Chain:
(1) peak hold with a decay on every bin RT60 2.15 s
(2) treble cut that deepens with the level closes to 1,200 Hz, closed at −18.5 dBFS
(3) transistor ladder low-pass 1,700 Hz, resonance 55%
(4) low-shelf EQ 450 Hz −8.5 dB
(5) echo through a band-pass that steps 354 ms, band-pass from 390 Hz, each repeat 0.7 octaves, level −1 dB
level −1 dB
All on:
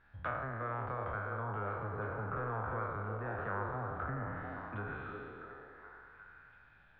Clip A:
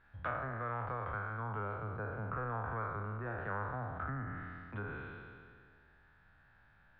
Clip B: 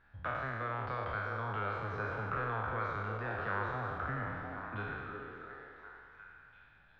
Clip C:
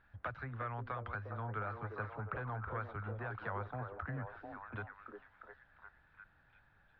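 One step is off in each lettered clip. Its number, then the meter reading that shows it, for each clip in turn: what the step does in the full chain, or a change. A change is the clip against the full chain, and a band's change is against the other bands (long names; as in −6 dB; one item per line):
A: 5, echo-to-direct ratio −5.5 dB to none audible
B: 2, 2 kHz band +4.0 dB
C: 1, change in integrated loudness −3.5 LU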